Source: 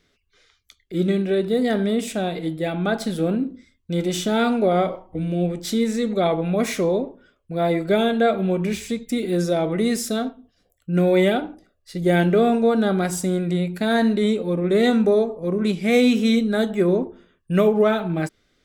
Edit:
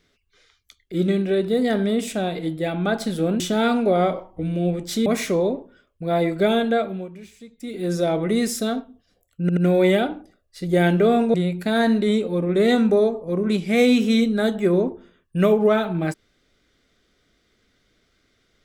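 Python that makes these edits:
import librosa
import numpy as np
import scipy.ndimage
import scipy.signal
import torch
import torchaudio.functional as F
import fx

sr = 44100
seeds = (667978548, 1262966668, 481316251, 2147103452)

y = fx.edit(x, sr, fx.cut(start_s=3.4, length_s=0.76),
    fx.cut(start_s=5.82, length_s=0.73),
    fx.fade_down_up(start_s=8.11, length_s=1.42, db=-17.0, fade_s=0.49),
    fx.stutter(start_s=10.9, slice_s=0.08, count=3),
    fx.cut(start_s=12.67, length_s=0.82), tone=tone)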